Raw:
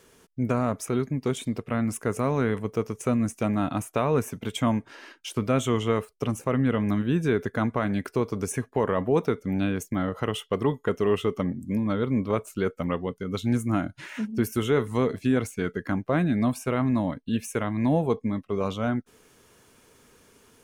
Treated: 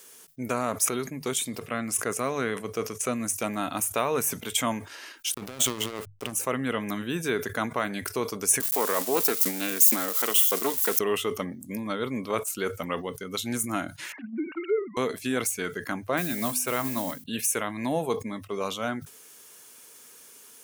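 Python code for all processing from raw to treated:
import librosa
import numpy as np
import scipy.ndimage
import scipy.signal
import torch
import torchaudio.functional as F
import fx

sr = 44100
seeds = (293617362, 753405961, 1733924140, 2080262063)

y = fx.chain(x, sr, fx.high_shelf(hz=12000.0, db=-11.0),
    fx.notch(hz=910.0, q=8.5), at=(1.68, 3.16))
y = fx.chain(y, sr, fx.over_compress(threshold_db=-30.0, ratio=-1.0),
    fx.backlash(play_db=-29.5), at=(5.34, 6.33))
y = fx.chain(y, sr, fx.crossing_spikes(level_db=-28.0),
    fx.highpass(hz=210.0, slope=24),
    fx.doppler_dist(depth_ms=0.15), at=(8.6, 10.99))
y = fx.chain(y, sr, fx.sine_speech(),
    fx.env_flanger(rest_ms=6.7, full_db=-22.0), at=(14.12, 14.97))
y = fx.chain(y, sr, fx.hum_notches(base_hz=50, count=5),
    fx.mod_noise(seeds[0], snr_db=27), at=(16.17, 17.24))
y = fx.riaa(y, sr, side='recording')
y = fx.hum_notches(y, sr, base_hz=50, count=3)
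y = fx.sustainer(y, sr, db_per_s=140.0)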